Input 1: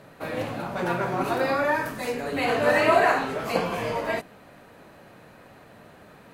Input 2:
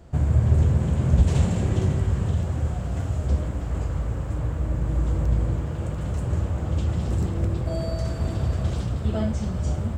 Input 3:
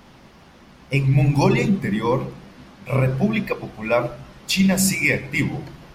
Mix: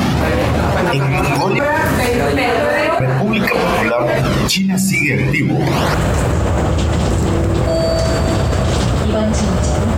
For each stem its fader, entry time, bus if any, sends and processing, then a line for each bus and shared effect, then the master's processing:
-13.0 dB, 0.00 s, no send, dry
-18.0 dB, 0.00 s, no send, low shelf 200 Hz -12 dB
-2.0 dB, 0.00 s, muted 1.59–3, no send, bell 110 Hz +7.5 dB 1.3 oct; tape flanging out of phase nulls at 0.41 Hz, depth 2.1 ms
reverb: off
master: fast leveller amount 100%

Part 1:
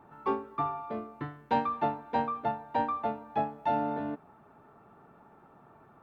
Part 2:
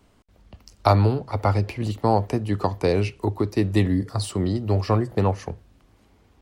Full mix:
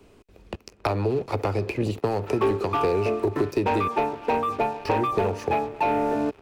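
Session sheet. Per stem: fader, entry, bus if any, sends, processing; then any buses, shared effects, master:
-3.5 dB, 2.15 s, no send, no echo send, LPF 2000 Hz; low shelf 280 Hz -7.5 dB
-13.0 dB, 0.00 s, muted 3.88–4.85, no send, echo send -23.5 dB, compressor, threshold -21 dBFS, peak gain reduction 9.5 dB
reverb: off
echo: feedback echo 0.72 s, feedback 35%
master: sample leveller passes 3; small resonant body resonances 400/2500 Hz, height 11 dB, ringing for 20 ms; three-band squash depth 70%

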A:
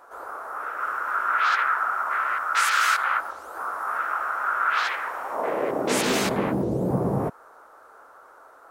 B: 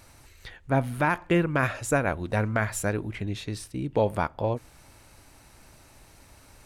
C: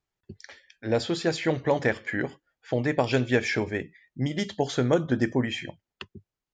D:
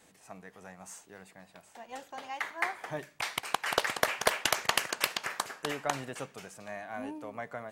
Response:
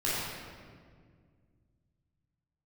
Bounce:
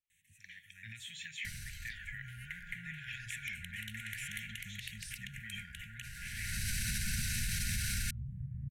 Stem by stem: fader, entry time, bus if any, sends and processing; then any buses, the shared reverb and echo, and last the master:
-2.0 dB, 1.50 s, bus A, no send, tilt -4.5 dB/oct; compressor, threshold -28 dBFS, peak gain reduction 18.5 dB
-17.0 dB, 1.45 s, no bus, no send, fast leveller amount 100%; auto duck -20 dB, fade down 1.85 s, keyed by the third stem
-7.0 dB, 0.00 s, bus A, no send, low shelf 500 Hz -11 dB
-6.0 dB, 0.10 s, bus A, no send, dry
bus A: 0.0 dB, fixed phaser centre 1000 Hz, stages 8; compressor 6:1, threshold -45 dBFS, peak gain reduction 15.5 dB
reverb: off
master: FFT band-reject 230–1400 Hz; AGC gain up to 8.5 dB; limiter -26 dBFS, peak gain reduction 8.5 dB

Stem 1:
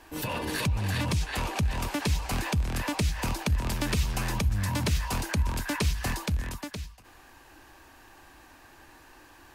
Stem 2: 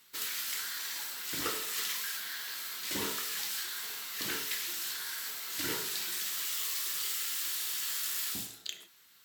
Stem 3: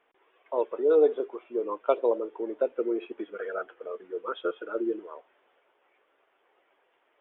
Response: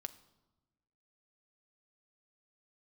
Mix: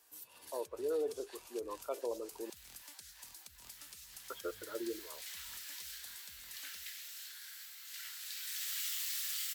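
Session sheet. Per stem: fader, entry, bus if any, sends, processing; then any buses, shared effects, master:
-5.0 dB, 0.00 s, no send, pre-emphasis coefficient 0.97; compressor 10:1, threshold -44 dBFS, peak gain reduction 14 dB; bell 2300 Hz -5.5 dB 1.1 oct
4.16 s -22.5 dB -> 4.96 s -11.5 dB -> 8.11 s -11.5 dB -> 8.81 s -2 dB, 2.35 s, no send, HPF 1500 Hz 24 dB/oct
-11.0 dB, 0.00 s, muted 2.5–4.3, no send, dry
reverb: off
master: limiter -28.5 dBFS, peak gain reduction 9 dB

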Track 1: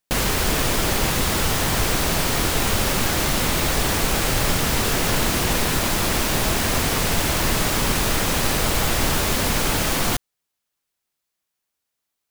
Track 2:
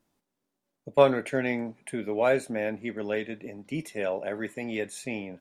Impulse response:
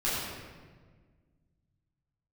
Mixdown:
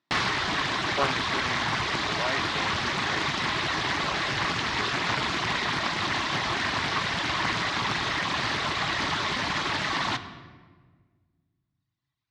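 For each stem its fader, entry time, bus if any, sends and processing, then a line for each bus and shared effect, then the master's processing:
-4.0 dB, 0.00 s, send -19 dB, reverb removal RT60 1.7 s; notch 1200 Hz, Q 27
-7.5 dB, 0.00 s, no send, dry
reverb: on, RT60 1.5 s, pre-delay 9 ms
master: speaker cabinet 130–5300 Hz, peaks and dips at 220 Hz -5 dB, 500 Hz -10 dB, 1100 Hz +9 dB, 1900 Hz +8 dB, 3700 Hz +6 dB; Doppler distortion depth 0.45 ms

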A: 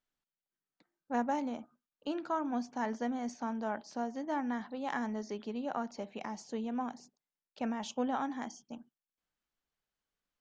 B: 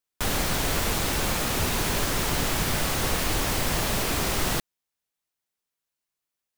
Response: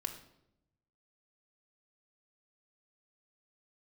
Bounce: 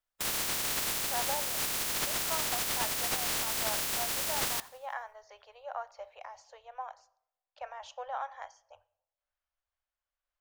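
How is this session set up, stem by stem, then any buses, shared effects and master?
0.0 dB, 0.00 s, send -9 dB, no echo send, Chebyshev band-stop 100–540 Hz, order 4; high shelf 3800 Hz -10.5 dB; noise-modulated level, depth 55%
-7.5 dB, 0.00 s, no send, echo send -22.5 dB, spectral limiter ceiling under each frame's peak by 27 dB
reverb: on, RT60 0.80 s, pre-delay 3 ms
echo: feedback echo 86 ms, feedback 52%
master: dry

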